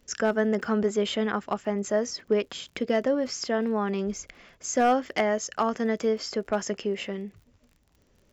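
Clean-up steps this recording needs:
clipped peaks rebuilt −14 dBFS
click removal

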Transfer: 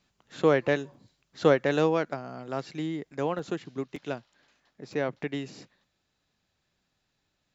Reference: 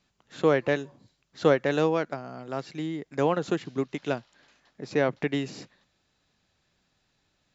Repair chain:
repair the gap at 0:00.94/0:03.39/0:03.96/0:04.93, 3 ms
level correction +5 dB, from 0:03.12

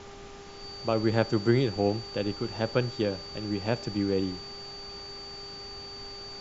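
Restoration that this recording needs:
hum removal 399.6 Hz, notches 3
notch filter 4,600 Hz, Q 30
noise reduction from a noise print 30 dB

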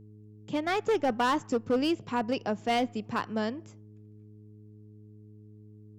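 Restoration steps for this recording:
clipped peaks rebuilt −21 dBFS
hum removal 105.9 Hz, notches 4

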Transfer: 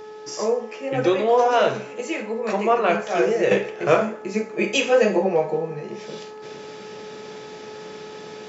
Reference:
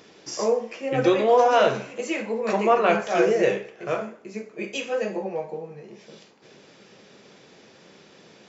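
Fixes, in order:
hum removal 428.2 Hz, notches 4
level correction −9.5 dB, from 0:03.51

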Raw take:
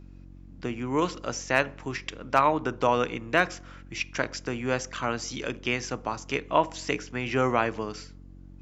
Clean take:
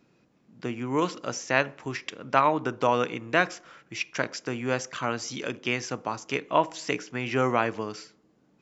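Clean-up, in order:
clipped peaks rebuilt −7 dBFS
hum removal 46 Hz, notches 7

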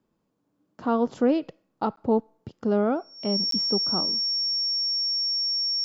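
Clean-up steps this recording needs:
notch filter 5,500 Hz, Q 30
repair the gap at 0:01.96/0:03.51, 13 ms

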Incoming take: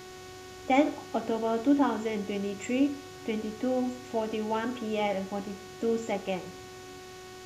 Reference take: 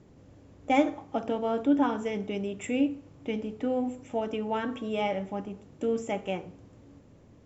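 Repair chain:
hum removal 370.2 Hz, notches 40
broadband denoise 9 dB, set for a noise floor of −46 dBFS

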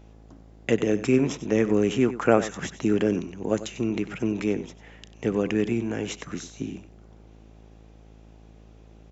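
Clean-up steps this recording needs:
hum removal 54.3 Hz, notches 15
echo removal 95 ms −14 dB

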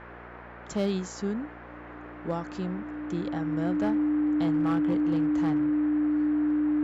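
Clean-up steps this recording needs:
clipped peaks rebuilt −20.5 dBFS
hum removal 59.2 Hz, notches 13
notch filter 300 Hz, Q 30
noise reduction from a noise print 30 dB

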